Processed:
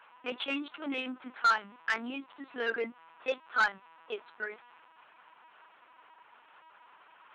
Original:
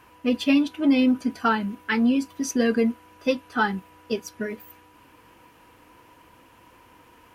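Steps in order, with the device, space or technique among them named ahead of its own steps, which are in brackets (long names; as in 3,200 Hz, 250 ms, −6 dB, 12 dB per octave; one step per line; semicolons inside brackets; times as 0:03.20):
talking toy (linear-prediction vocoder at 8 kHz pitch kept; high-pass filter 640 Hz 12 dB per octave; parametric band 1,400 Hz +7 dB 0.45 octaves; soft clipping −16.5 dBFS, distortion −11 dB)
level −3 dB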